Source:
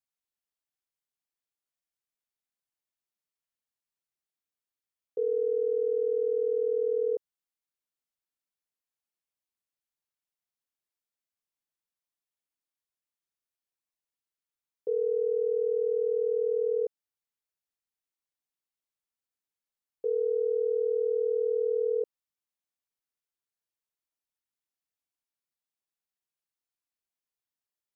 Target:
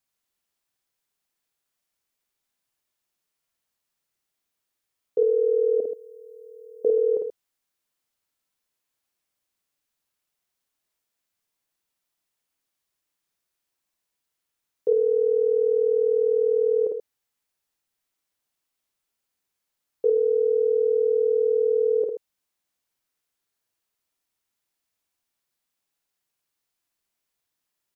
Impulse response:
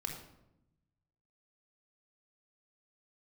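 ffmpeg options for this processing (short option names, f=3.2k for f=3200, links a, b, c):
-filter_complex "[0:a]asettb=1/sr,asplit=3[a][b][c];[a]atrim=end=5.804[d];[b]atrim=start=5.8:end=6.85,asetpts=PTS-STARTPTS,afade=t=in:d=0.004:c=qsin,afade=t=out:st=1.046:d=0.004:c=qsin,aderivative[e];[c]atrim=start=6.846[f];[d][e]acrossfade=d=0.004:c1=hsin:c2=qsin[g];[g][f]acrossfade=d=0.004:c1=qsin:c2=hsin,asplit=2[h][i];[i]aecho=0:1:43|50|53|131:0.106|0.1|0.631|0.266[j];[h][j]amix=inputs=2:normalize=0,volume=9dB"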